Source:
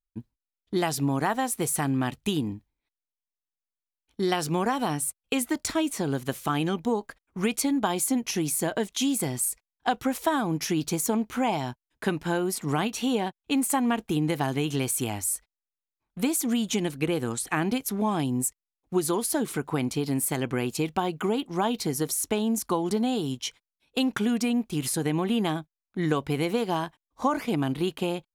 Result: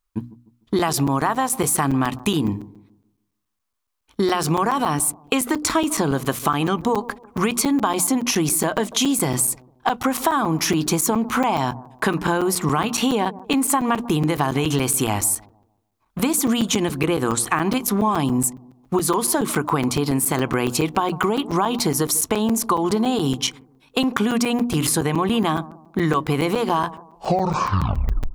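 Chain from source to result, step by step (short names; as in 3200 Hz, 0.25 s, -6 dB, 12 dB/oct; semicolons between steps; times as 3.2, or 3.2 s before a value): tape stop at the end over 1.48 s; bell 1100 Hz +9.5 dB 0.57 oct; notches 60/120/180/240/300 Hz; in parallel at +2 dB: limiter -22 dBFS, peak gain reduction 14 dB; on the sum: compressor, threshold -21 dBFS, peak gain reduction 8 dB; analogue delay 0.15 s, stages 1024, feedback 35%, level -17.5 dB; crackling interface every 0.14 s, samples 256, zero, from 0.79; gain +5 dB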